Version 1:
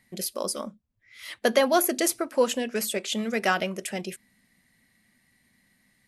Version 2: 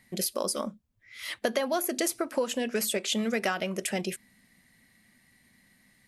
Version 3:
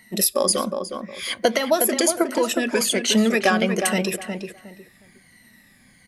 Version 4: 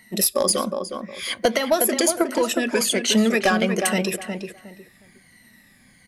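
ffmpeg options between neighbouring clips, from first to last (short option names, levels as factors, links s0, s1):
-af "acompressor=threshold=0.0398:ratio=6,volume=1.41"
-filter_complex "[0:a]afftfilt=real='re*pow(10,13/40*sin(2*PI*(1.9*log(max(b,1)*sr/1024/100)/log(2)-(-1.3)*(pts-256)/sr)))':imag='im*pow(10,13/40*sin(2*PI*(1.9*log(max(b,1)*sr/1024/100)/log(2)-(-1.3)*(pts-256)/sr)))':win_size=1024:overlap=0.75,asplit=2[s0][s1];[s1]adelay=362,lowpass=f=2100:p=1,volume=0.501,asplit=2[s2][s3];[s3]adelay=362,lowpass=f=2100:p=1,volume=0.24,asplit=2[s4][s5];[s5]adelay=362,lowpass=f=2100:p=1,volume=0.24[s6];[s0][s2][s4][s6]amix=inputs=4:normalize=0,volume=2.24"
-af "aeval=exprs='clip(val(0),-1,0.282)':c=same"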